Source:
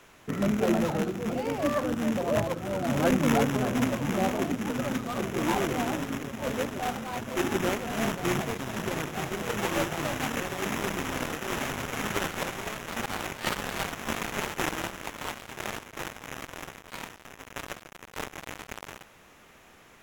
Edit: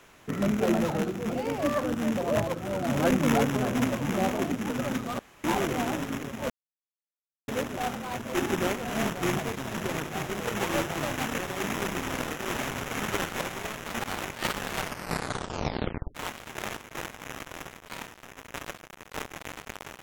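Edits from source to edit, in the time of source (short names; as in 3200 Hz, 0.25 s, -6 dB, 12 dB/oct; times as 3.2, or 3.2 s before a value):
5.19–5.44 room tone
6.5 insert silence 0.98 s
13.78 tape stop 1.39 s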